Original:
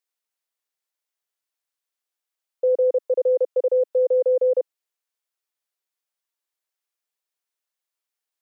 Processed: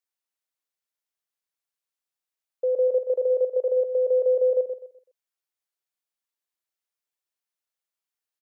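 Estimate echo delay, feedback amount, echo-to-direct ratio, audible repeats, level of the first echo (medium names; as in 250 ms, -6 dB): 126 ms, 30%, -8.0 dB, 3, -8.5 dB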